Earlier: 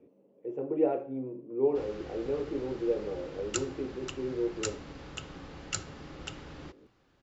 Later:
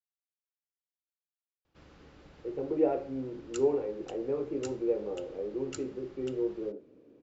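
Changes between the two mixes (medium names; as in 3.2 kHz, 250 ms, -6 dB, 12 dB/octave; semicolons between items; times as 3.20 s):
speech: entry +2.00 s; background -10.0 dB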